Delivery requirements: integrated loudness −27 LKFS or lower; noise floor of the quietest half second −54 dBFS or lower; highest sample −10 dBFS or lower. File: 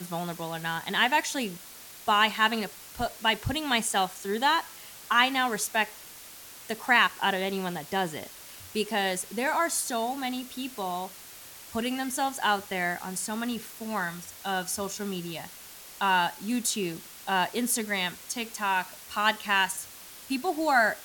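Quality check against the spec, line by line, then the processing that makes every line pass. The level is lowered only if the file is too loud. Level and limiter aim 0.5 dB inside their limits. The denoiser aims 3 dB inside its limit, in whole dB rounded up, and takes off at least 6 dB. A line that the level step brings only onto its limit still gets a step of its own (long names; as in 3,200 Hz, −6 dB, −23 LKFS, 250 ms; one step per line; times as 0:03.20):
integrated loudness −28.0 LKFS: in spec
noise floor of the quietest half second −47 dBFS: out of spec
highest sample −8.0 dBFS: out of spec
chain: broadband denoise 10 dB, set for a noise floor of −47 dBFS
brickwall limiter −10.5 dBFS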